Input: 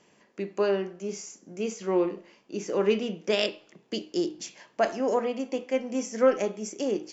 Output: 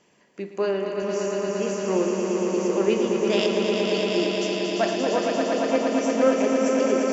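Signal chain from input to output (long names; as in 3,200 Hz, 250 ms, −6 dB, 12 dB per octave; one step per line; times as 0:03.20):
feedback delay that plays each chunk backwards 128 ms, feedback 82%, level −12 dB
echo that builds up and dies away 115 ms, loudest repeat 5, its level −5.5 dB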